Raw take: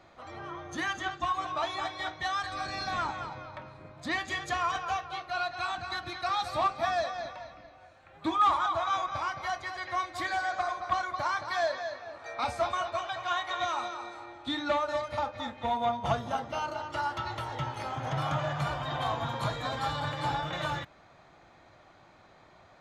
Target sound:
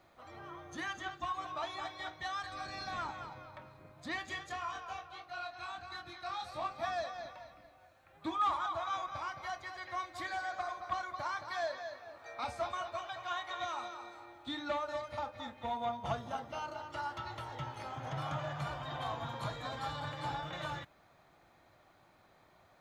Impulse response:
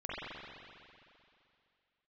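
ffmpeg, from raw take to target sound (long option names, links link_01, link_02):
-filter_complex "[0:a]acrusher=bits=11:mix=0:aa=0.000001,asplit=3[link_01][link_02][link_03];[link_01]afade=type=out:start_time=4.42:duration=0.02[link_04];[link_02]flanger=delay=22.5:depth=3:speed=1.5,afade=type=in:start_time=4.42:duration=0.02,afade=type=out:start_time=6.69:duration=0.02[link_05];[link_03]afade=type=in:start_time=6.69:duration=0.02[link_06];[link_04][link_05][link_06]amix=inputs=3:normalize=0,volume=-7.5dB"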